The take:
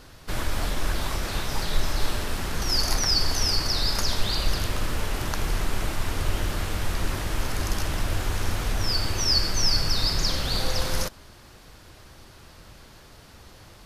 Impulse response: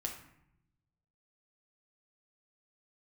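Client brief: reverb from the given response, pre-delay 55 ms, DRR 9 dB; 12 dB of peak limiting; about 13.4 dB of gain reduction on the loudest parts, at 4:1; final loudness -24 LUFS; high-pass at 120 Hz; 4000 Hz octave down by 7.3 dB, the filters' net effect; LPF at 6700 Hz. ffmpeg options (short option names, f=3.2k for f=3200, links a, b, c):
-filter_complex "[0:a]highpass=120,lowpass=6.7k,equalizer=f=4k:t=o:g=-8.5,acompressor=threshold=-42dB:ratio=4,alimiter=level_in=13dB:limit=-24dB:level=0:latency=1,volume=-13dB,asplit=2[a][b];[1:a]atrim=start_sample=2205,adelay=55[c];[b][c]afir=irnorm=-1:irlink=0,volume=-9dB[d];[a][d]amix=inputs=2:normalize=0,volume=22dB"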